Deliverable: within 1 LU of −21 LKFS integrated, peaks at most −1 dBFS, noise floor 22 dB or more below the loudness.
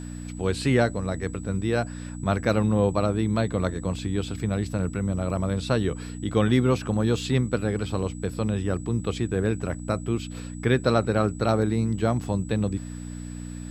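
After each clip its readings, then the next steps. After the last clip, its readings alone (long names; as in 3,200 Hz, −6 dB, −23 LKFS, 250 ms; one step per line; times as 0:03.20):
mains hum 60 Hz; hum harmonics up to 300 Hz; level of the hum −33 dBFS; interfering tone 7,900 Hz; level of the tone −47 dBFS; integrated loudness −26.0 LKFS; sample peak −7.5 dBFS; target loudness −21.0 LKFS
→ hum removal 60 Hz, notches 5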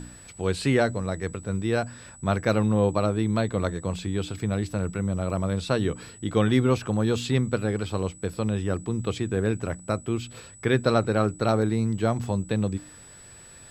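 mains hum none found; interfering tone 7,900 Hz; level of the tone −47 dBFS
→ notch filter 7,900 Hz, Q 30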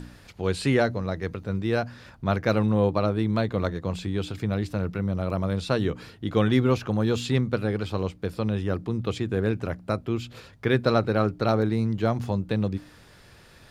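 interfering tone none found; integrated loudness −26.5 LKFS; sample peak −8.0 dBFS; target loudness −21.0 LKFS
→ level +5.5 dB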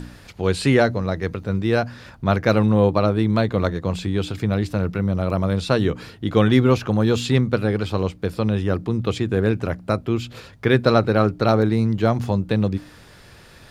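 integrated loudness −21.0 LKFS; sample peak −2.5 dBFS; background noise floor −47 dBFS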